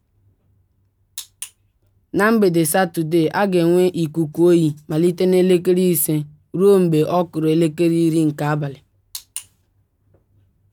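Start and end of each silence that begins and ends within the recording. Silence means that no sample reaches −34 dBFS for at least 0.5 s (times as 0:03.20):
0:01.48–0:02.14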